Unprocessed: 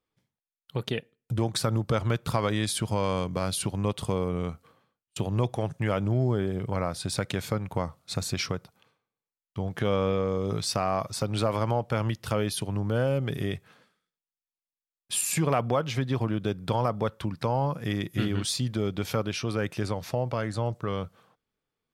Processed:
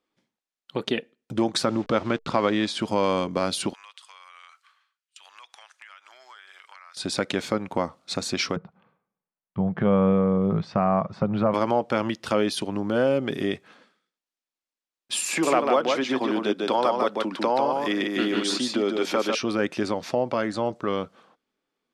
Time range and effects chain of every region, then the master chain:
1.64–2.79 level-crossing sampler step -43 dBFS + air absorption 86 m
3.73–6.97 HPF 1300 Hz 24 dB/oct + compressor 8:1, threshold -48 dBFS
8.56–11.54 LPF 1500 Hz + resonant low shelf 220 Hz +6.5 dB, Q 3
15.28–19.35 HPF 300 Hz + echo 0.148 s -4 dB + three-band squash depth 40%
whole clip: LPF 7000 Hz 12 dB/oct; resonant low shelf 170 Hz -12.5 dB, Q 1.5; notch 450 Hz, Q 14; gain +5 dB

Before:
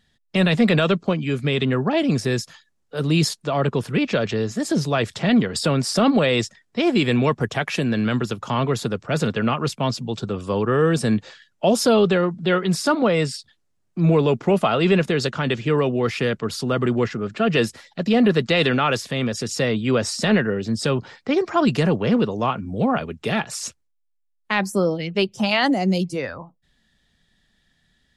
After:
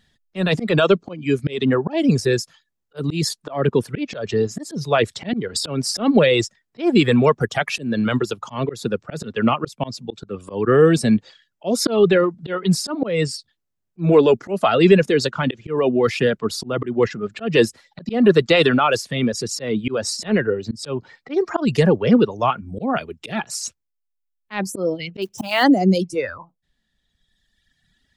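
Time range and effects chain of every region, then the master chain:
25.22–25.64 block floating point 5-bit + mismatched tape noise reduction encoder only
whole clip: reverb removal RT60 1.9 s; dynamic EQ 370 Hz, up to +5 dB, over -29 dBFS, Q 0.88; auto swell 0.209 s; gain +3 dB

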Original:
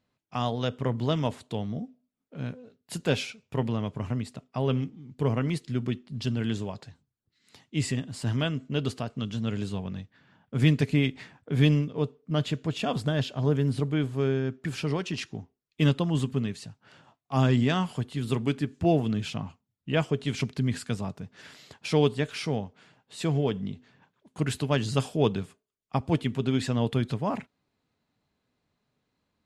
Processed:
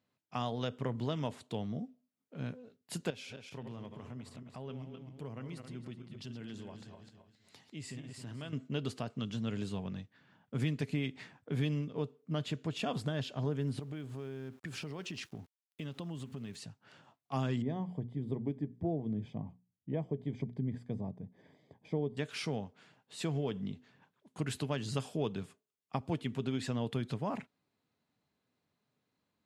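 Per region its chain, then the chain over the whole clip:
3.1–8.53 regenerating reverse delay 0.133 s, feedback 49%, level -8.5 dB + compressor 2:1, threshold -45 dBFS
13.79–16.56 bell 64 Hz +7 dB 0.5 oct + compressor 10:1, threshold -33 dBFS + sample gate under -56.5 dBFS
17.62–22.17 running mean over 32 samples + notches 60/120/180/240 Hz
whole clip: HPF 95 Hz; compressor 3:1, threshold -27 dBFS; gain -4.5 dB

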